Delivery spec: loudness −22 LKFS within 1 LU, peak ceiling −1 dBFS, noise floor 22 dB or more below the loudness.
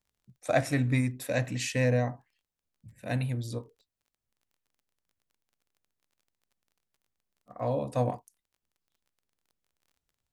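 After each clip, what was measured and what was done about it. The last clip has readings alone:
crackle rate 20 per second; integrated loudness −30.0 LKFS; sample peak −11.5 dBFS; target loudness −22.0 LKFS
→ click removal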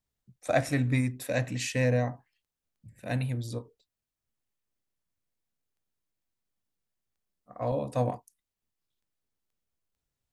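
crackle rate 0 per second; integrated loudness −30.0 LKFS; sample peak −11.5 dBFS; target loudness −22.0 LKFS
→ level +8 dB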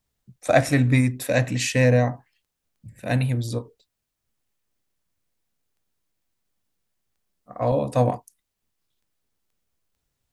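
integrated loudness −22.0 LKFS; sample peak −3.5 dBFS; background noise floor −81 dBFS

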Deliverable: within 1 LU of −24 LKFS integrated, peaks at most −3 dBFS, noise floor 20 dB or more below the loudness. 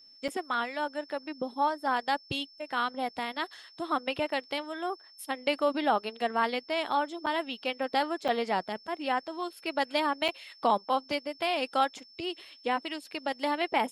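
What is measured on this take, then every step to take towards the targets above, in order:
number of dropouts 4; longest dropout 6.4 ms; interfering tone 5,300 Hz; level of the tone −53 dBFS; integrated loudness −31.5 LKFS; sample peak −12.5 dBFS; target loudness −24.0 LKFS
→ repair the gap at 0:00.28/0:07.26/0:08.28/0:10.28, 6.4 ms
notch filter 5,300 Hz, Q 30
level +7.5 dB

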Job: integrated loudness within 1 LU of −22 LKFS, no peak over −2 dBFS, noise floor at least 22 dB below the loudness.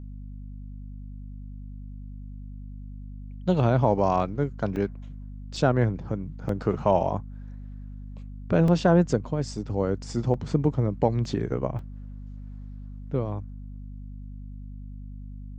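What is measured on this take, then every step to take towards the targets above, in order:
number of dropouts 7; longest dropout 2.4 ms; mains hum 50 Hz; hum harmonics up to 250 Hz; level of the hum −36 dBFS; integrated loudness −26.0 LKFS; sample peak −7.0 dBFS; target loudness −22.0 LKFS
→ repair the gap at 0:04.76/0:05.56/0:06.49/0:08.68/0:10.34/0:11.25/0:11.79, 2.4 ms
mains-hum notches 50/100/150/200/250 Hz
level +4 dB

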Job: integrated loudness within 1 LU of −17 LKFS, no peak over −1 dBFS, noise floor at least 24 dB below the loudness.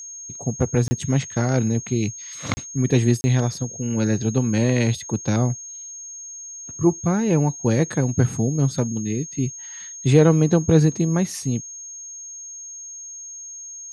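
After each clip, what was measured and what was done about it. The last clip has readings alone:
number of dropouts 3; longest dropout 30 ms; interfering tone 6,500 Hz; level of the tone −34 dBFS; integrated loudness −21.5 LKFS; sample peak −3.0 dBFS; target loudness −17.0 LKFS
→ repair the gap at 0:00.88/0:02.54/0:03.21, 30 ms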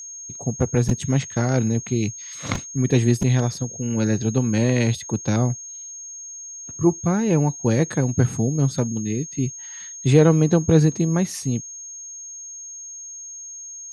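number of dropouts 0; interfering tone 6,500 Hz; level of the tone −34 dBFS
→ notch filter 6,500 Hz, Q 30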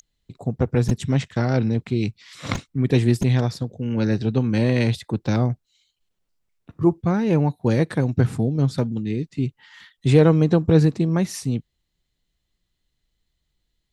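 interfering tone none found; integrated loudness −21.5 LKFS; sample peak −3.0 dBFS; target loudness −17.0 LKFS
→ level +4.5 dB
brickwall limiter −1 dBFS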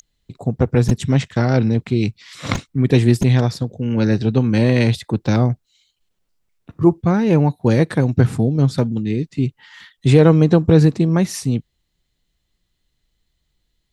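integrated loudness −17.0 LKFS; sample peak −1.0 dBFS; background noise floor −72 dBFS

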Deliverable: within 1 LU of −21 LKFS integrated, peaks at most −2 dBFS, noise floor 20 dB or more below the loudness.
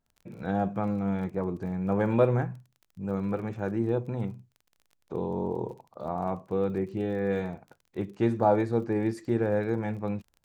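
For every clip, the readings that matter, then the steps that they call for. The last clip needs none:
crackle rate 28 per second; integrated loudness −29.5 LKFS; sample peak −9.5 dBFS; target loudness −21.0 LKFS
→ click removal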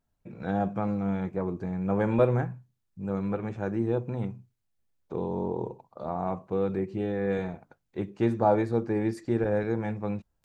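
crackle rate 0.096 per second; integrated loudness −29.5 LKFS; sample peak −9.5 dBFS; target loudness −21.0 LKFS
→ level +8.5 dB
brickwall limiter −2 dBFS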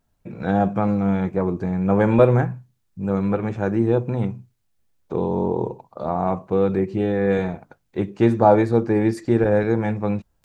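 integrated loudness −21.0 LKFS; sample peak −2.0 dBFS; background noise floor −69 dBFS

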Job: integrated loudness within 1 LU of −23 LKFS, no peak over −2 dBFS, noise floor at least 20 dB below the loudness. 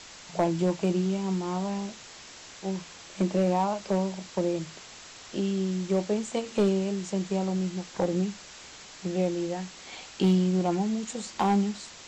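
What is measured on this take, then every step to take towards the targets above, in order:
share of clipped samples 0.5%; peaks flattened at −16.5 dBFS; background noise floor −47 dBFS; target noise floor −49 dBFS; integrated loudness −28.5 LKFS; sample peak −16.5 dBFS; target loudness −23.0 LKFS
→ clipped peaks rebuilt −16.5 dBFS
noise reduction from a noise print 6 dB
level +5.5 dB

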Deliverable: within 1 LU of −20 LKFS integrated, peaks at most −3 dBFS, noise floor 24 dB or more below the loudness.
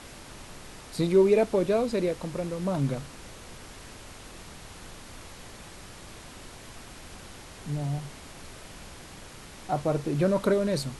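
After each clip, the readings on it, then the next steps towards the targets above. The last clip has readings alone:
background noise floor −46 dBFS; target noise floor −51 dBFS; integrated loudness −27.0 LKFS; sample peak −11.5 dBFS; target loudness −20.0 LKFS
→ noise reduction from a noise print 6 dB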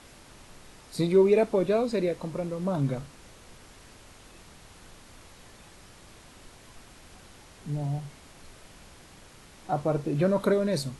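background noise floor −52 dBFS; integrated loudness −27.0 LKFS; sample peak −11.5 dBFS; target loudness −20.0 LKFS
→ level +7 dB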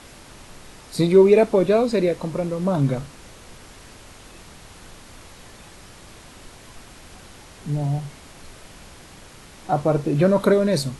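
integrated loudness −20.0 LKFS; sample peak −4.5 dBFS; background noise floor −45 dBFS

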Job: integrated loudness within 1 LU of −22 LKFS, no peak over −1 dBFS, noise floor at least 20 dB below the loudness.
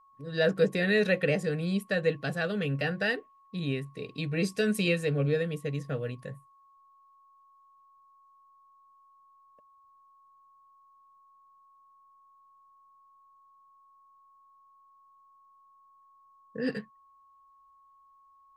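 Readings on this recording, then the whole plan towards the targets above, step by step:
interfering tone 1,100 Hz; level of the tone −58 dBFS; integrated loudness −29.5 LKFS; sample peak −13.5 dBFS; target loudness −22.0 LKFS
→ notch filter 1,100 Hz, Q 30
level +7.5 dB

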